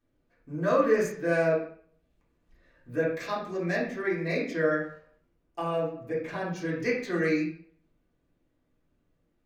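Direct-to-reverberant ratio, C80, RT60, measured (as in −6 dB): −8.0 dB, 8.0 dB, 0.55 s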